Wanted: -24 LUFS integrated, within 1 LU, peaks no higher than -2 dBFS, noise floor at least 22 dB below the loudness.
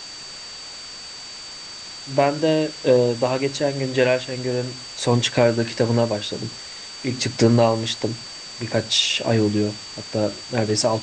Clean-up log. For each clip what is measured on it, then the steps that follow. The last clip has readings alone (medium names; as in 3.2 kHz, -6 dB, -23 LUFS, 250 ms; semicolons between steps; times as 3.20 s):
steady tone 4.6 kHz; tone level -36 dBFS; noise floor -37 dBFS; noise floor target -44 dBFS; loudness -21.5 LUFS; peak level -3.0 dBFS; loudness target -24.0 LUFS
-> band-stop 4.6 kHz, Q 30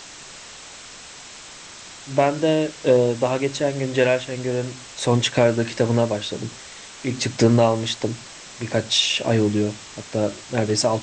steady tone not found; noise floor -41 dBFS; noise floor target -44 dBFS
-> noise reduction 6 dB, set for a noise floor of -41 dBFS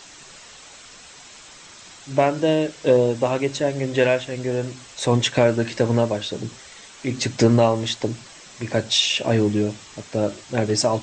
noise floor -45 dBFS; loudness -21.5 LUFS; peak level -3.0 dBFS; loudness target -24.0 LUFS
-> trim -2.5 dB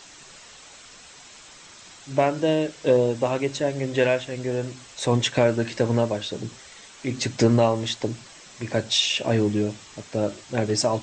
loudness -24.0 LUFS; peak level -5.5 dBFS; noise floor -47 dBFS